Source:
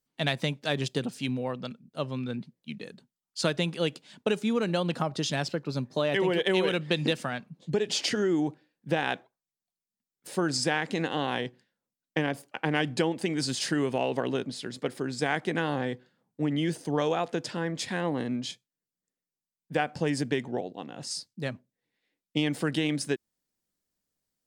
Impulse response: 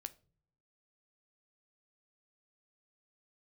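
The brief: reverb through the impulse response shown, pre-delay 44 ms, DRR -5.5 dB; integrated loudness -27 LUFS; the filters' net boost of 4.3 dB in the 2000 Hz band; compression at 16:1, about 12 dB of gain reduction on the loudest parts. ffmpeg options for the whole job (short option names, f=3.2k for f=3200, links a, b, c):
-filter_complex "[0:a]equalizer=f=2k:t=o:g=5.5,acompressor=threshold=-32dB:ratio=16,asplit=2[a][b];[1:a]atrim=start_sample=2205,adelay=44[c];[b][c]afir=irnorm=-1:irlink=0,volume=9.5dB[d];[a][d]amix=inputs=2:normalize=0,volume=4.5dB"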